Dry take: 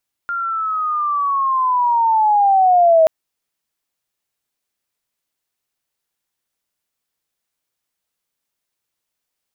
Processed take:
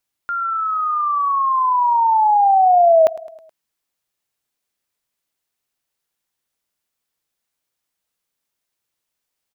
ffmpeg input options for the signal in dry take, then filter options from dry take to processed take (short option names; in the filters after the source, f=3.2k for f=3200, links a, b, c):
-f lavfi -i "aevalsrc='pow(10,(-19.5+12*t/2.78)/20)*sin(2*PI*(1400*t-770*t*t/(2*2.78)))':d=2.78:s=44100"
-af "aecho=1:1:106|212|318|424:0.112|0.0595|0.0315|0.0167"